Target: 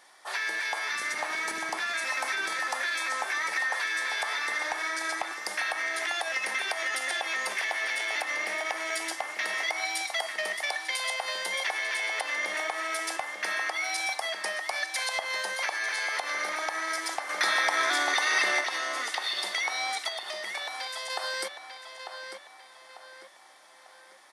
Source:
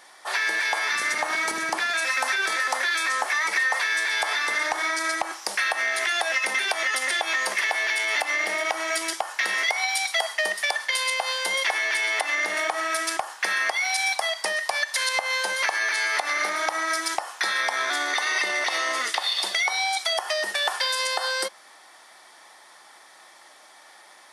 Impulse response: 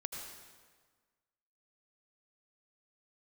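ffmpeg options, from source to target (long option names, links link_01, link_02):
-filter_complex "[0:a]asettb=1/sr,asplit=3[link_01][link_02][link_03];[link_01]atrim=end=20.084[link_04];[link_02]atrim=start=20.08:end=21.1,asetpts=PTS-STARTPTS,afade=type=in:duration=0.004:curve=qsin,afade=type=out:start_time=1.016:duration=0.004:curve=qsin,acompressor=threshold=-28dB:ratio=6[link_05];[link_03]atrim=start=21.096[link_06];[link_04][link_05]acrossfade=duration=0.004:curve1=hsin:curve2=qsin[link_07];[link_07][link_06]acrossfade=duration=0.004:curve1=qsin:curve2=hsin,asplit=2[link_08][link_09];[link_09]adelay=896,lowpass=frequency=4000:poles=1,volume=-7dB,asplit=2[link_10][link_11];[link_11]adelay=896,lowpass=frequency=4000:poles=1,volume=0.43,asplit=2[link_12][link_13];[link_13]adelay=896,lowpass=frequency=4000:poles=1,volume=0.43,asplit=2[link_14][link_15];[link_15]adelay=896,lowpass=frequency=4000:poles=1,volume=0.43,asplit=2[link_16][link_17];[link_17]adelay=896,lowpass=frequency=4000:poles=1,volume=0.43[link_18];[link_08][link_10][link_12][link_14][link_16][link_18]amix=inputs=6:normalize=0,asettb=1/sr,asplit=3[link_19][link_20][link_21];[link_19]atrim=end=17.294[link_22];[link_20]atrim=start=17.29:end=18.61,asetpts=PTS-STARTPTS,afade=type=in:duration=0.004:curve=qsin,afade=type=out:start_time=1.316:duration=0.004:curve=qsin,acontrast=43[link_23];[link_21]atrim=start=18.606[link_24];[link_22][link_23]acrossfade=duration=0.004:curve1=hsin:curve2=qsin[link_25];[link_25][link_24]acrossfade=duration=0.004:curve1=qsin:curve2=hsin,volume=-6.5dB"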